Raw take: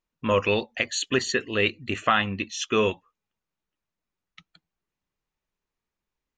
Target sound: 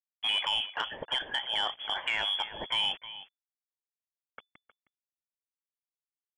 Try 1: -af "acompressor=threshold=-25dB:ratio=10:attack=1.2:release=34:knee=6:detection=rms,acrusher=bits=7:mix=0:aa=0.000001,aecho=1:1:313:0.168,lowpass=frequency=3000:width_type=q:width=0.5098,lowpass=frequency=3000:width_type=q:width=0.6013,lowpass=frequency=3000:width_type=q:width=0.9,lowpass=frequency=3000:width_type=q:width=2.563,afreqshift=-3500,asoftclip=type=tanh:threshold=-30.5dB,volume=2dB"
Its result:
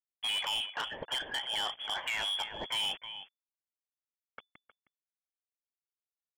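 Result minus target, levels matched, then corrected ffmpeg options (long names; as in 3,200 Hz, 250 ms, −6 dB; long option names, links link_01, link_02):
soft clipping: distortion +12 dB
-af "acompressor=threshold=-25dB:ratio=10:attack=1.2:release=34:knee=6:detection=rms,acrusher=bits=7:mix=0:aa=0.000001,aecho=1:1:313:0.168,lowpass=frequency=3000:width_type=q:width=0.5098,lowpass=frequency=3000:width_type=q:width=0.6013,lowpass=frequency=3000:width_type=q:width=0.9,lowpass=frequency=3000:width_type=q:width=2.563,afreqshift=-3500,asoftclip=type=tanh:threshold=-20.5dB,volume=2dB"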